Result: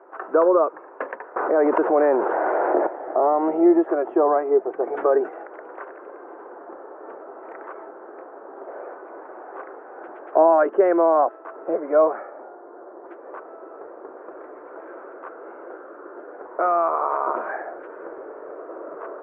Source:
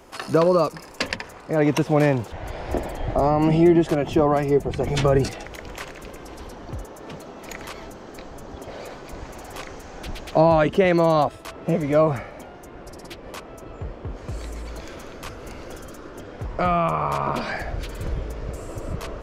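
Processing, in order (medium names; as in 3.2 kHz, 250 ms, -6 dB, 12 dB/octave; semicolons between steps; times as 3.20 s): 11.80–13.06 s: level-controlled noise filter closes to 1.1 kHz, open at -14.5 dBFS; elliptic band-pass 350–1500 Hz, stop band 50 dB; 1.36–2.87 s: level flattener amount 70%; trim +2 dB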